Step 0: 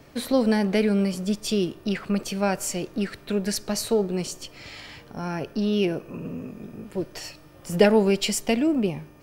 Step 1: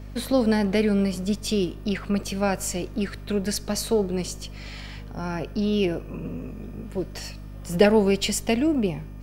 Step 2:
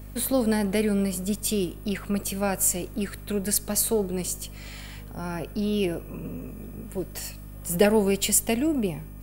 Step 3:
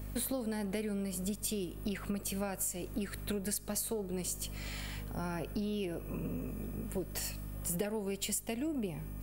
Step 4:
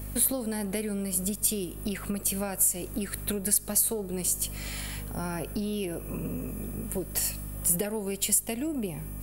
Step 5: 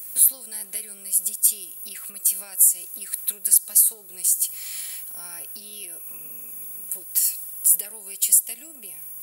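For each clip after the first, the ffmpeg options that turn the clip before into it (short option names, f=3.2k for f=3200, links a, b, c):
-af "aeval=exprs='val(0)+0.0141*(sin(2*PI*50*n/s)+sin(2*PI*2*50*n/s)/2+sin(2*PI*3*50*n/s)/3+sin(2*PI*4*50*n/s)/4+sin(2*PI*5*50*n/s)/5)':c=same"
-af "aexciter=amount=4.2:drive=7:freq=7.6k,volume=-2.5dB"
-af "acompressor=threshold=-31dB:ratio=12,volume=-1.5dB"
-af "equalizer=f=11k:t=o:w=0.77:g=11,volume=4.5dB"
-af "aderivative,volume=6dB"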